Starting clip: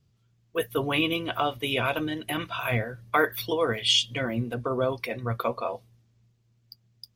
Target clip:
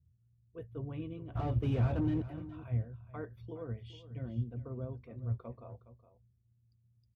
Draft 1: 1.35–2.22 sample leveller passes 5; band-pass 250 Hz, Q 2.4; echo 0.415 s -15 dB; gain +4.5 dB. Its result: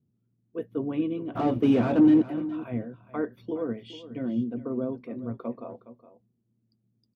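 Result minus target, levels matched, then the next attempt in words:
125 Hz band -13.5 dB
1.35–2.22 sample leveller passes 5; band-pass 76 Hz, Q 2.4; echo 0.415 s -15 dB; gain +4.5 dB

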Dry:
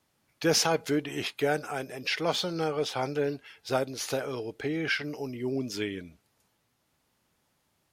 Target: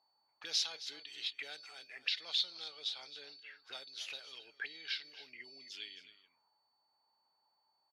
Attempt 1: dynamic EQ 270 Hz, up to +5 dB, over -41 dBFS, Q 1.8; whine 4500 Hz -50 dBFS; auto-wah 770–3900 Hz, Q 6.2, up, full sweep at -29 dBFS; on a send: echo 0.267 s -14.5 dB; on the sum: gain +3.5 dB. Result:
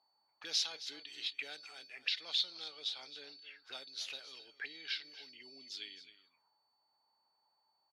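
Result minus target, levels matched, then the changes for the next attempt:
250 Hz band +3.5 dB
change: dynamic EQ 71 Hz, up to +5 dB, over -41 dBFS, Q 1.8

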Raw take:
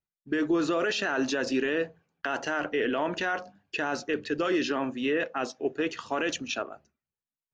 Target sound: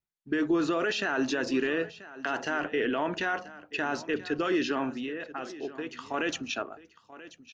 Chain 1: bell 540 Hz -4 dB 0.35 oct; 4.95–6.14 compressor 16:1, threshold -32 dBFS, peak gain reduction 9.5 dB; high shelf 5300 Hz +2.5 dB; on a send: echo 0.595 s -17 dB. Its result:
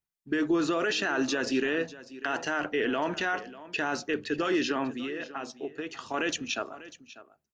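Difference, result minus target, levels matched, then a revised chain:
echo 0.389 s early; 8000 Hz band +4.0 dB
bell 540 Hz -4 dB 0.35 oct; 4.95–6.14 compressor 16:1, threshold -32 dBFS, peak gain reduction 9.5 dB; high shelf 5300 Hz -5 dB; on a send: echo 0.984 s -17 dB

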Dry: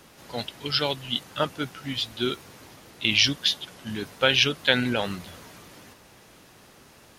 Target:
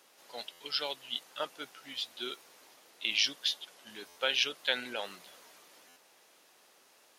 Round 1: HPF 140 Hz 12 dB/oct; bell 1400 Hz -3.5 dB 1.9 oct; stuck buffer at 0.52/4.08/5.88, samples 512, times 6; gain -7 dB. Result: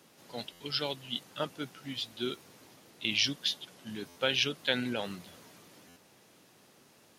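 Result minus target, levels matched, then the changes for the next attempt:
125 Hz band +20.0 dB
change: HPF 540 Hz 12 dB/oct

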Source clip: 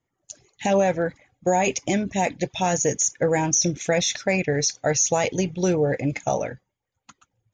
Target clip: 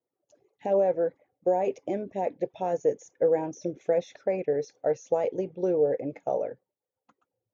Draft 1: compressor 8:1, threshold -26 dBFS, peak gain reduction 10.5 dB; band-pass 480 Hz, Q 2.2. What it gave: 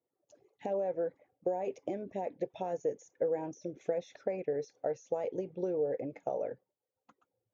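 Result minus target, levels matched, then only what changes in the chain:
compressor: peak gain reduction +10.5 dB
remove: compressor 8:1, threshold -26 dBFS, peak gain reduction 10.5 dB

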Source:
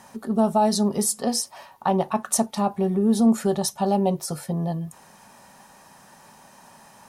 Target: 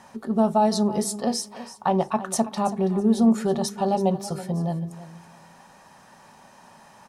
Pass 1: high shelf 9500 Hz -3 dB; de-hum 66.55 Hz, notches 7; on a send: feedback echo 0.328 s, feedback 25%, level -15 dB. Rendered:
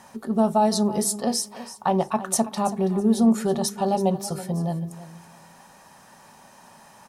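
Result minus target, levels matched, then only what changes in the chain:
8000 Hz band +4.0 dB
change: high shelf 9500 Hz -14 dB

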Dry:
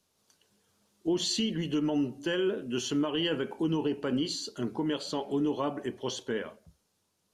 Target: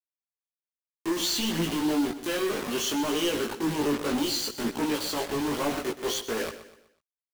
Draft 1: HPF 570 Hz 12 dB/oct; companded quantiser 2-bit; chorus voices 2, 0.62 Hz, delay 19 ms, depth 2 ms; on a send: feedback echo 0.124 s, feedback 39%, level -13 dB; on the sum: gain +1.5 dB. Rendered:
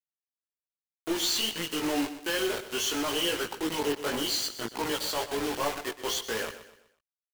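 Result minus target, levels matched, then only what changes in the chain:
250 Hz band -4.5 dB
change: HPF 210 Hz 12 dB/oct

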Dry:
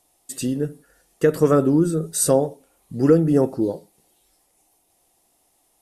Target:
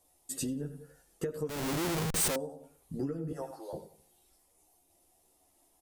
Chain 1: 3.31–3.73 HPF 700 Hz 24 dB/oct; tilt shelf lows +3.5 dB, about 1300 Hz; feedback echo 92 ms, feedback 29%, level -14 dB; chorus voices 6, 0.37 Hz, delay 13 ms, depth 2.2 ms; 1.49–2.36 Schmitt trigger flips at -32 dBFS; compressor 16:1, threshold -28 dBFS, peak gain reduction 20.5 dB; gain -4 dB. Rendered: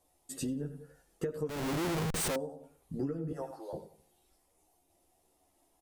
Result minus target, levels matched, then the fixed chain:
8000 Hz band -3.5 dB
3.31–3.73 HPF 700 Hz 24 dB/oct; tilt shelf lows +3.5 dB, about 1300 Hz; feedback echo 92 ms, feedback 29%, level -14 dB; chorus voices 6, 0.37 Hz, delay 13 ms, depth 2.2 ms; 1.49–2.36 Schmitt trigger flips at -32 dBFS; compressor 16:1, threshold -28 dBFS, peak gain reduction 20.5 dB; high shelf 4600 Hz +7 dB; gain -4 dB

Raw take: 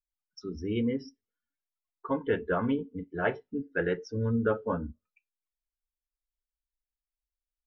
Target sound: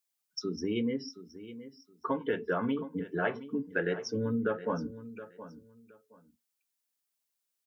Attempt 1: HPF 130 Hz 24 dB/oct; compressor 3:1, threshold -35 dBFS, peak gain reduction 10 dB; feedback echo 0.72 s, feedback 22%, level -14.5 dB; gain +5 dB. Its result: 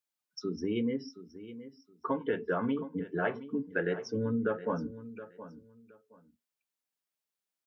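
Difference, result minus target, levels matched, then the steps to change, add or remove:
8000 Hz band -6.0 dB
add after compressor: high shelf 4000 Hz +9 dB

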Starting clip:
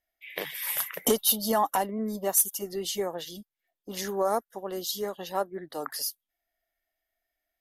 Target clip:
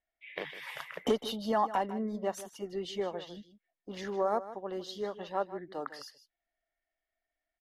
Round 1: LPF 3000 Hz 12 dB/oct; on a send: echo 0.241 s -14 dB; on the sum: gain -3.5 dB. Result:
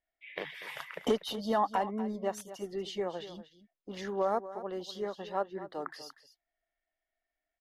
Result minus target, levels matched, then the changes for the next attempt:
echo 87 ms late
change: echo 0.154 s -14 dB

